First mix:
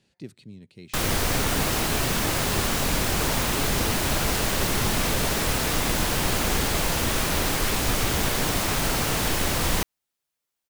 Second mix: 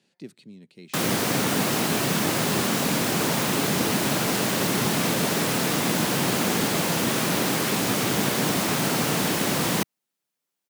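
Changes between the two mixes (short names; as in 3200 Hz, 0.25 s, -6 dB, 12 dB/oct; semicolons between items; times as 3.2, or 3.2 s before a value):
background: add low shelf 270 Hz +10 dB; master: add HPF 160 Hz 24 dB/oct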